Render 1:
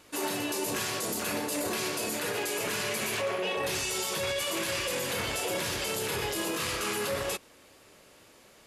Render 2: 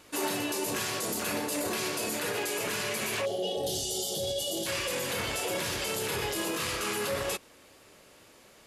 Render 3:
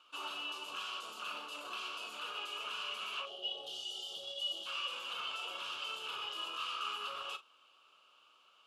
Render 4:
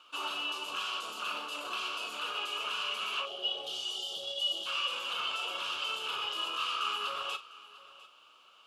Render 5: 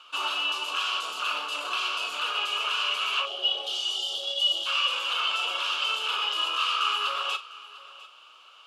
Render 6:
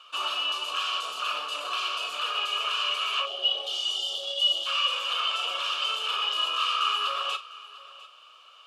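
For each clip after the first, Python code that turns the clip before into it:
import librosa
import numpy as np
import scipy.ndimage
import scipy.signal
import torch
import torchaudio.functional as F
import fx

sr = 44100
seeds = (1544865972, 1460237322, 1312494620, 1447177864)

y1 = fx.spec_box(x, sr, start_s=3.26, length_s=1.4, low_hz=850.0, high_hz=2800.0, gain_db=-23)
y1 = fx.rider(y1, sr, range_db=10, speed_s=0.5)
y2 = fx.double_bandpass(y1, sr, hz=1900.0, octaves=1.2)
y2 = fx.doubler(y2, sr, ms=41.0, db=-13)
y2 = F.gain(torch.from_numpy(y2), 1.0).numpy()
y3 = y2 + 10.0 ** (-19.0 / 20.0) * np.pad(y2, (int(700 * sr / 1000.0), 0))[:len(y2)]
y3 = F.gain(torch.from_numpy(y3), 6.0).numpy()
y4 = fx.weighting(y3, sr, curve='A')
y4 = F.gain(torch.from_numpy(y4), 6.5).numpy()
y5 = y4 + 0.37 * np.pad(y4, (int(1.7 * sr / 1000.0), 0))[:len(y4)]
y5 = F.gain(torch.from_numpy(y5), -1.5).numpy()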